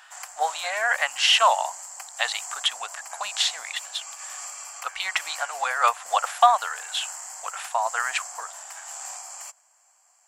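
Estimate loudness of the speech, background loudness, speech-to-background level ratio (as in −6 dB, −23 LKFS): −24.5 LKFS, −36.0 LKFS, 11.5 dB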